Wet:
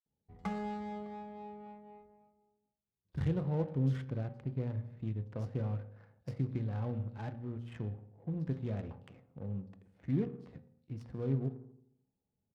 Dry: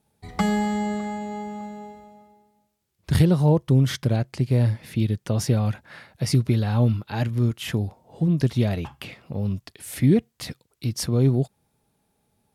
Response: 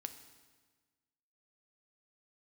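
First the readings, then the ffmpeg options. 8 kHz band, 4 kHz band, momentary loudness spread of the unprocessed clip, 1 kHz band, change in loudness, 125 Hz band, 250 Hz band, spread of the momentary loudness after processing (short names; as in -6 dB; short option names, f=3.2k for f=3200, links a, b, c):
under -30 dB, under -25 dB, 16 LU, -14.0 dB, -15.0 dB, -14.5 dB, -15.0 dB, 17 LU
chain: -filter_complex "[0:a]acrossover=split=3900[a][b];[a]adelay=60[c];[c][b]amix=inputs=2:normalize=0[d];[1:a]atrim=start_sample=2205,asetrate=79380,aresample=44100[e];[d][e]afir=irnorm=-1:irlink=0,adynamicsmooth=sensitivity=8:basefreq=640,volume=-6.5dB"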